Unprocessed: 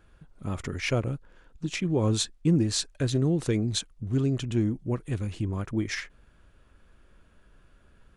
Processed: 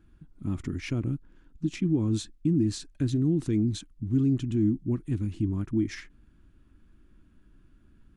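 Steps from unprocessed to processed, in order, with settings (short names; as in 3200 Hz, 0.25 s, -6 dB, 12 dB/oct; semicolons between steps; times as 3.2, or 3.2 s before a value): limiter -19.5 dBFS, peak gain reduction 7 dB; resonant low shelf 390 Hz +8 dB, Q 3; gain -8 dB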